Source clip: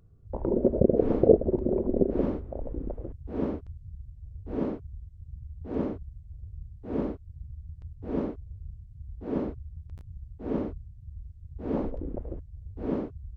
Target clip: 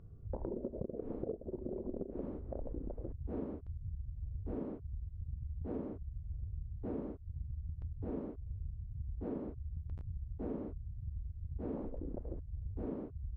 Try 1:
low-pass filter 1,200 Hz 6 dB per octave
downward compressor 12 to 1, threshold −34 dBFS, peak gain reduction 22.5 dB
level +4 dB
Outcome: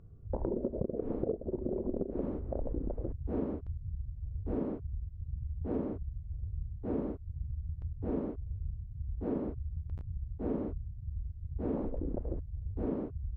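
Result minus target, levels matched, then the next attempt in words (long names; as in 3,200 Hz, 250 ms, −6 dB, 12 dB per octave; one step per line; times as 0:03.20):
downward compressor: peak gain reduction −6.5 dB
low-pass filter 1,200 Hz 6 dB per octave
downward compressor 12 to 1, threshold −41 dBFS, peak gain reduction 29 dB
level +4 dB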